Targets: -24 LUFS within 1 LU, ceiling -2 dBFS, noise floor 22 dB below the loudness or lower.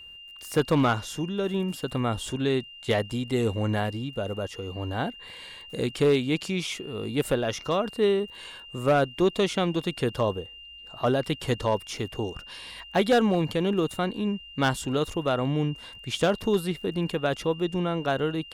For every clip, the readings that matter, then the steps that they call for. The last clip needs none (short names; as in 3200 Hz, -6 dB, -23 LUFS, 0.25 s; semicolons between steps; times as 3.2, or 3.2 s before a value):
clipped 0.4%; flat tops at -15.0 dBFS; steady tone 2800 Hz; tone level -43 dBFS; loudness -27.0 LUFS; peak -15.0 dBFS; loudness target -24.0 LUFS
-> clip repair -15 dBFS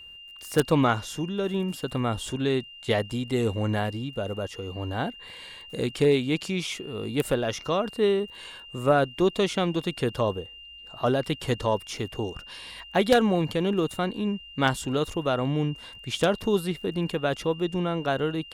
clipped 0.0%; steady tone 2800 Hz; tone level -43 dBFS
-> notch 2800 Hz, Q 30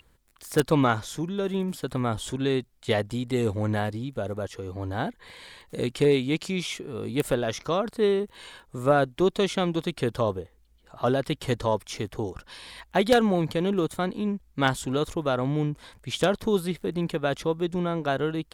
steady tone none; loudness -27.0 LUFS; peak -6.0 dBFS; loudness target -24.0 LUFS
-> gain +3 dB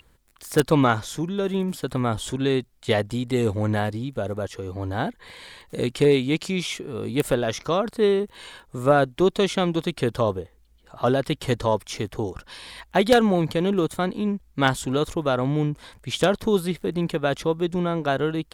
loudness -24.0 LUFS; peak -3.0 dBFS; noise floor -58 dBFS